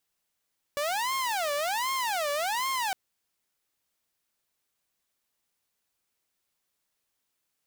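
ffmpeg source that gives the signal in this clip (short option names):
-f lavfi -i "aevalsrc='0.0596*(2*mod((822.5*t-247.5/(2*PI*1.3)*sin(2*PI*1.3*t)),1)-1)':d=2.16:s=44100"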